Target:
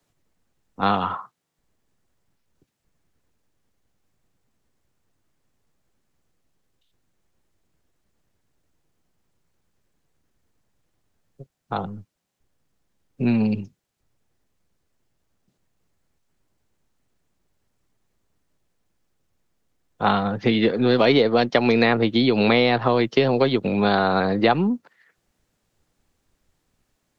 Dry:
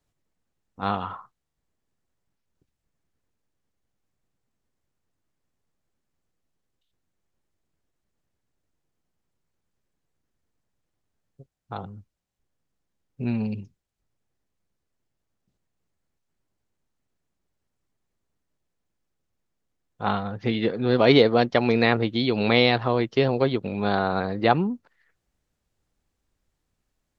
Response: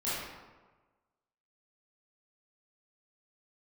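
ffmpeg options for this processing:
-filter_complex "[0:a]acrossover=split=120|1300[a][b][c];[a]aeval=exprs='max(val(0),0)':c=same[d];[d][b][c]amix=inputs=3:normalize=0,acrossover=split=84|2100[e][f][g];[e]acompressor=threshold=-55dB:ratio=4[h];[f]acompressor=threshold=-23dB:ratio=4[i];[g]acompressor=threshold=-34dB:ratio=4[j];[h][i][j]amix=inputs=3:normalize=0,volume=8dB"

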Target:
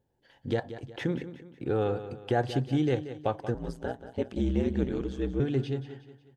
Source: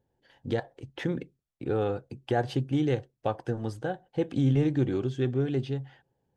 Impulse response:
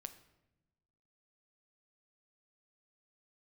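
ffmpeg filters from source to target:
-filter_complex "[0:a]aecho=1:1:182|364|546|728:0.237|0.0996|0.0418|0.0176,asettb=1/sr,asplit=3[a][b][c];[a]atrim=end=3.544[d];[b]atrim=start=3.54:end=5.4,asetpts=PTS-STARTPTS,afade=t=in:d=0.004:c=qsin,afade=t=out:st=1.856:d=0.004:c=qsin,aeval=exprs='val(0)*sin(2*PI*63*n/s)':c=same[e];[c]atrim=start=5.396[f];[d][e]acrossfade=d=0.004:c1=hsin:c2=qsin[g];[g][f]acrossfade=d=0.004:c1=qsin:c2=hsin"

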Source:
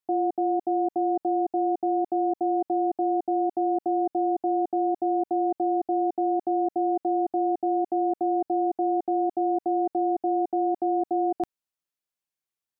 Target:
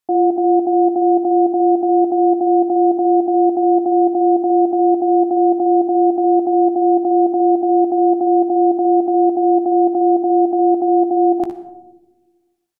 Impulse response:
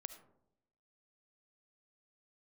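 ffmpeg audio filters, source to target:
-filter_complex "[0:a]asplit=2[a][b];[b]adelay=17,volume=-12dB[c];[a][c]amix=inputs=2:normalize=0,aecho=1:1:61|73:0.335|0.251,asplit=2[d][e];[1:a]atrim=start_sample=2205,asetrate=26901,aresample=44100[f];[e][f]afir=irnorm=-1:irlink=0,volume=5.5dB[g];[d][g]amix=inputs=2:normalize=0"

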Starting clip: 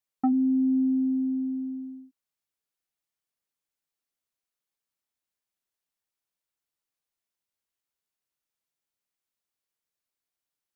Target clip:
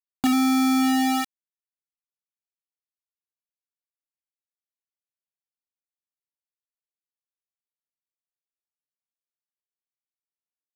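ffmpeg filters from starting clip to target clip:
-af "aeval=exprs='val(0)+0.5*0.00841*sgn(val(0))':c=same,acrusher=bits=3:mix=0:aa=0.000001"

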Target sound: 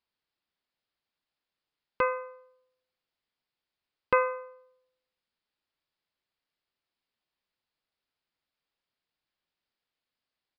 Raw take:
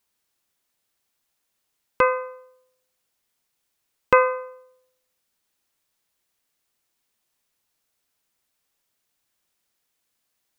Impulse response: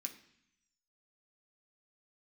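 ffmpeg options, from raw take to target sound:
-af "aresample=11025,aresample=44100,volume=-8dB"

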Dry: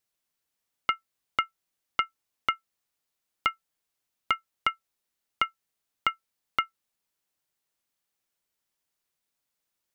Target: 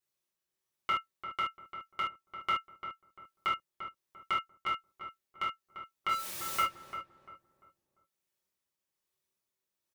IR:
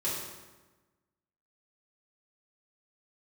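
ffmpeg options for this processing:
-filter_complex "[0:a]asettb=1/sr,asplit=3[a][b][c];[a]atrim=end=6.094[d];[b]atrim=start=6.09:end=6.61,asetpts=PTS-STARTPTS,afade=t=in:d=0.004:c=qsin,afade=t=out:st=0.516:d=0.004:c=qsin,aeval=exprs='val(0)+0.5*0.0376*sgn(val(0))':c=same[e];[c]atrim=start=6.606[f];[d][e]acrossfade=d=0.004:c1=hsin:c2=qsin[g];[g][f]acrossfade=d=0.004:c1=qsin:c2=hsin,tremolo=f=1.2:d=0.34,asplit=2[h][i];[i]adelay=345,lowpass=f=1.4k:p=1,volume=-8dB,asplit=2[j][k];[k]adelay=345,lowpass=f=1.4k:p=1,volume=0.37,asplit=2[l][m];[m]adelay=345,lowpass=f=1.4k:p=1,volume=0.37,asplit=2[n][o];[o]adelay=345,lowpass=f=1.4k:p=1,volume=0.37[p];[h][j][l][n][p]amix=inputs=5:normalize=0[q];[1:a]atrim=start_sample=2205,atrim=end_sample=3528[r];[q][r]afir=irnorm=-1:irlink=0,volume=-7dB"

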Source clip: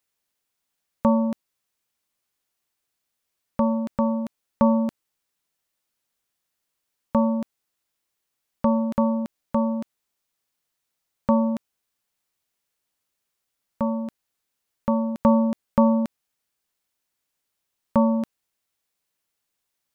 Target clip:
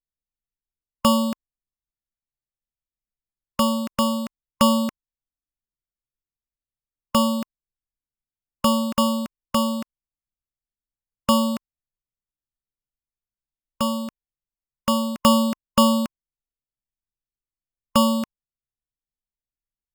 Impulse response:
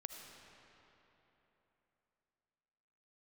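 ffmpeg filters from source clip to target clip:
-af "superequalizer=10b=3.16:11b=2.51,acrusher=samples=11:mix=1:aa=0.000001,anlmdn=0.0251"

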